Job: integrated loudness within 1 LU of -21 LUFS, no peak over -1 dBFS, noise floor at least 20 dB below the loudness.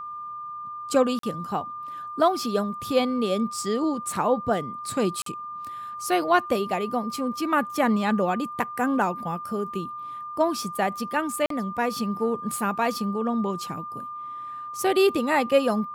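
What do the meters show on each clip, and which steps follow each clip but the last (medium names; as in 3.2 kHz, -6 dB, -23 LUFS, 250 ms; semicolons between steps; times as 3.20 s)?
dropouts 3; longest dropout 43 ms; steady tone 1.2 kHz; tone level -33 dBFS; loudness -26.0 LUFS; peak level -7.5 dBFS; loudness target -21.0 LUFS
-> interpolate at 1.19/5.22/11.46 s, 43 ms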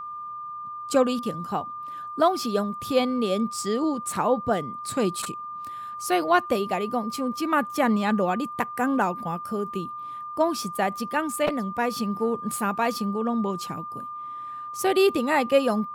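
dropouts 0; steady tone 1.2 kHz; tone level -33 dBFS
-> band-stop 1.2 kHz, Q 30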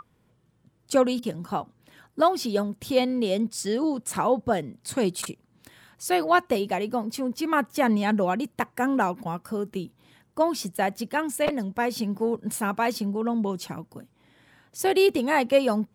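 steady tone not found; loudness -26.0 LUFS; peak level -8.0 dBFS; loudness target -21.0 LUFS
-> trim +5 dB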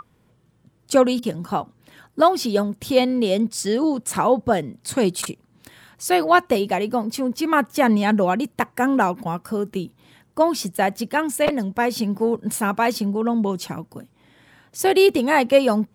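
loudness -21.0 LUFS; peak level -3.0 dBFS; noise floor -61 dBFS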